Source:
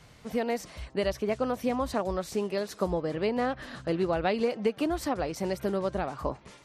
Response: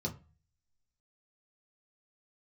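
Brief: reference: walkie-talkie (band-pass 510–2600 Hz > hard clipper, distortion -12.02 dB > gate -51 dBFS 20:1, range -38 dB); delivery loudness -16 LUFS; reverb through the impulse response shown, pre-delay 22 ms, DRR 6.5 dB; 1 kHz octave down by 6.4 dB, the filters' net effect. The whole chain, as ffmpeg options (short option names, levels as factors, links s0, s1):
-filter_complex "[0:a]equalizer=f=1000:t=o:g=-8.5,asplit=2[s0][s1];[1:a]atrim=start_sample=2205,adelay=22[s2];[s1][s2]afir=irnorm=-1:irlink=0,volume=0.376[s3];[s0][s3]amix=inputs=2:normalize=0,highpass=510,lowpass=2600,asoftclip=type=hard:threshold=0.0335,agate=range=0.0126:threshold=0.00282:ratio=20,volume=10.6"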